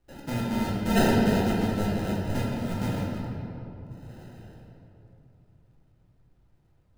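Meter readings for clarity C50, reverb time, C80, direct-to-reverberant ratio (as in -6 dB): -1.0 dB, 2.9 s, 0.5 dB, -5.5 dB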